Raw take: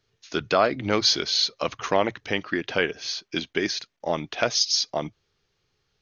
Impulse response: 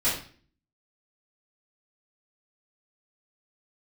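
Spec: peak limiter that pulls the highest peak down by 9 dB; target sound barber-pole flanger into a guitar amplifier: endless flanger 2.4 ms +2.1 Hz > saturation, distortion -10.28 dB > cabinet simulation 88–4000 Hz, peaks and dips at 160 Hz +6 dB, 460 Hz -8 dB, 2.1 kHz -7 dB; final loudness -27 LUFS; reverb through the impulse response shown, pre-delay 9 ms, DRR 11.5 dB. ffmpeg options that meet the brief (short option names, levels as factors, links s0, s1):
-filter_complex "[0:a]alimiter=limit=0.168:level=0:latency=1,asplit=2[s0][s1];[1:a]atrim=start_sample=2205,adelay=9[s2];[s1][s2]afir=irnorm=-1:irlink=0,volume=0.0708[s3];[s0][s3]amix=inputs=2:normalize=0,asplit=2[s4][s5];[s5]adelay=2.4,afreqshift=2.1[s6];[s4][s6]amix=inputs=2:normalize=1,asoftclip=threshold=0.0335,highpass=88,equalizer=f=160:t=q:w=4:g=6,equalizer=f=460:t=q:w=4:g=-8,equalizer=f=2100:t=q:w=4:g=-7,lowpass=f=4000:w=0.5412,lowpass=f=4000:w=1.3066,volume=3.55"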